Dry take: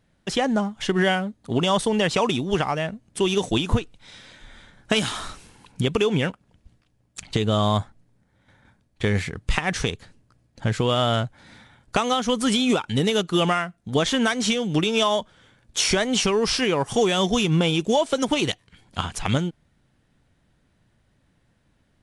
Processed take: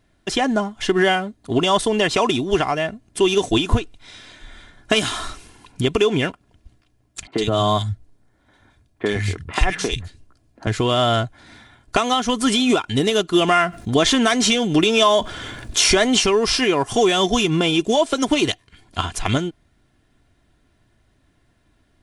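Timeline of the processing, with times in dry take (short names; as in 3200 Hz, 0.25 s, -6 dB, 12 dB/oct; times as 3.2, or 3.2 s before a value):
7.27–10.67 three bands offset in time mids, highs, lows 50/120 ms, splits 160/2000 Hz
13.48–16.19 fast leveller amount 50%
whole clip: comb 2.9 ms, depth 47%; gain +3 dB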